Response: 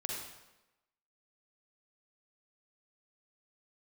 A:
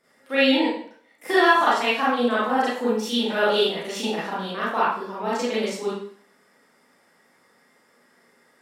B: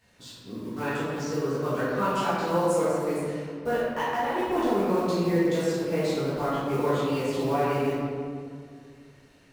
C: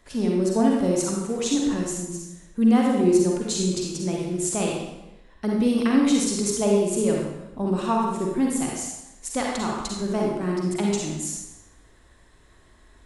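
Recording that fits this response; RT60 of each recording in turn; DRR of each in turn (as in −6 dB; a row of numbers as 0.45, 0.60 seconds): C; 0.55, 2.2, 1.0 seconds; −9.5, −12.5, −2.0 decibels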